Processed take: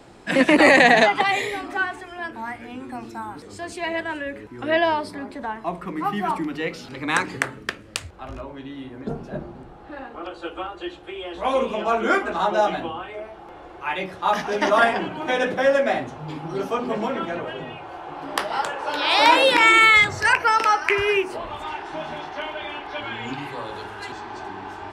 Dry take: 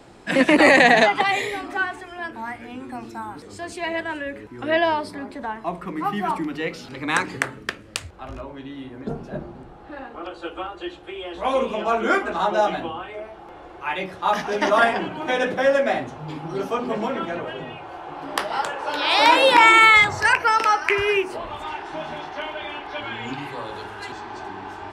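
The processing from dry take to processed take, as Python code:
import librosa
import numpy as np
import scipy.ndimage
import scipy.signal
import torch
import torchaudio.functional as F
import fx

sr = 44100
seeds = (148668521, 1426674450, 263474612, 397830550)

y = fx.peak_eq(x, sr, hz=930.0, db=-7.5, octaves=0.76, at=(19.43, 20.27))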